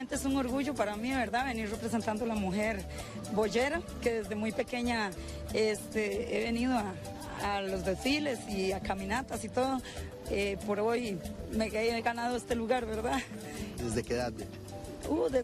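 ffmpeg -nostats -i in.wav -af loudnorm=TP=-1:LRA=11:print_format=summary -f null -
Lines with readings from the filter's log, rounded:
Input Integrated:    -33.5 LUFS
Input True Peak:     -17.1 dBTP
Input LRA:             1.4 LU
Input Threshold:     -43.6 LUFS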